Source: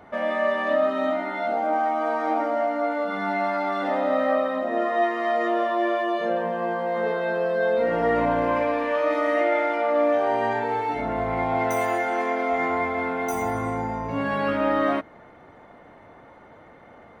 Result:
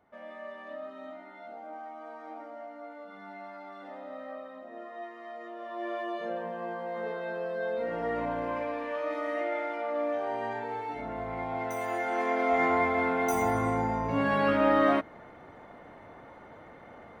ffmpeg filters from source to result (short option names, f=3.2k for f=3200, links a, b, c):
-af "volume=-1dB,afade=t=in:st=5.58:d=0.41:silence=0.334965,afade=t=in:st=11.8:d=0.81:silence=0.354813"